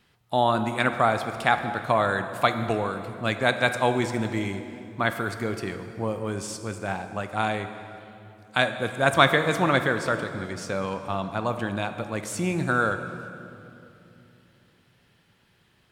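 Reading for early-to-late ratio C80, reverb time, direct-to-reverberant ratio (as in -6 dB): 9.5 dB, 2.9 s, 8.0 dB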